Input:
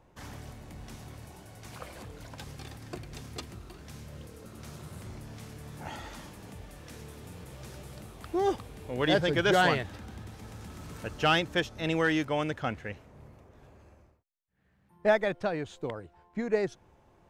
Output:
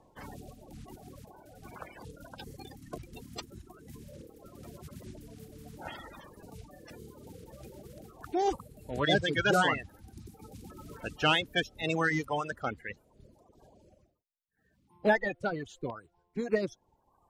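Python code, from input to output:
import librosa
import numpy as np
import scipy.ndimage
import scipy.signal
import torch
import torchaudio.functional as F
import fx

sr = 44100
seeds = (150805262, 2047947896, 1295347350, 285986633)

y = fx.spec_quant(x, sr, step_db=30)
y = fx.dereverb_blind(y, sr, rt60_s=1.4)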